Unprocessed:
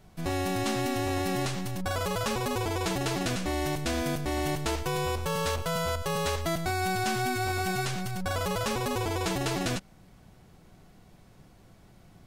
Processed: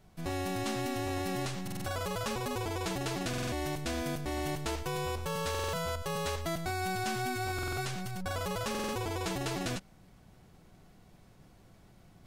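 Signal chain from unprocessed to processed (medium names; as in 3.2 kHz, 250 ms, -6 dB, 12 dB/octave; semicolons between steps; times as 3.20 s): reverse; upward compressor, threshold -47 dBFS; reverse; buffer glitch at 1.63/3.29/5.50/7.54/8.70 s, samples 2048, times 4; trim -5 dB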